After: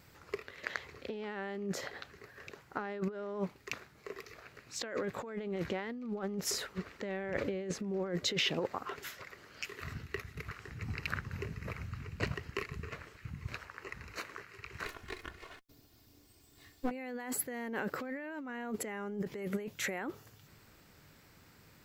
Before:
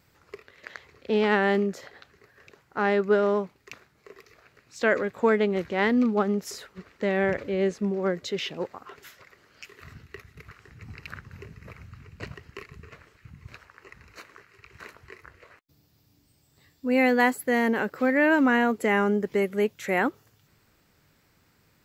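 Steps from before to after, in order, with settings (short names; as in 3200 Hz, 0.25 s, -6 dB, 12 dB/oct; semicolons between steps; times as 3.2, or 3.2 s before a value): 14.85–16.91 minimum comb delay 2.8 ms; negative-ratio compressor -33 dBFS, ratio -1; gain -4.5 dB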